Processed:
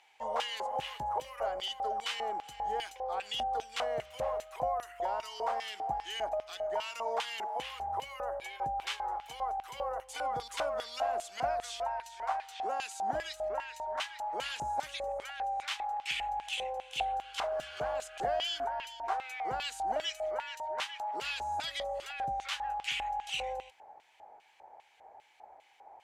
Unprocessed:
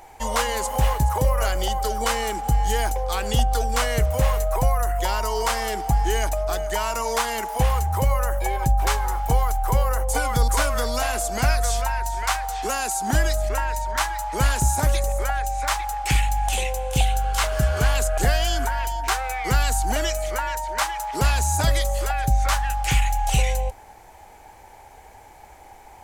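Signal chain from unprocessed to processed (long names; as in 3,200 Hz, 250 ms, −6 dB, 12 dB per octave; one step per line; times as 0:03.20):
auto-filter band-pass square 2.5 Hz 690–3,000 Hz
level −3.5 dB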